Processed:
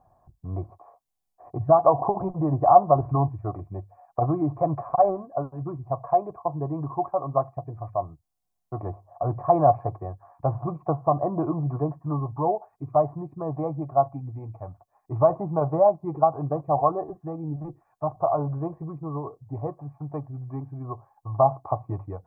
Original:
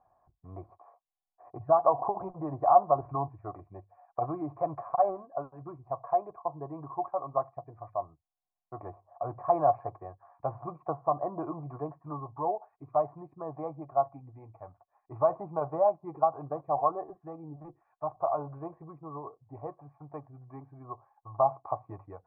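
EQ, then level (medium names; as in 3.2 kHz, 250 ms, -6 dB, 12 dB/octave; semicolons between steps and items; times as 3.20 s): tone controls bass +14 dB, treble +8 dB; peaking EQ 450 Hz +6.5 dB 2.8 oct; 0.0 dB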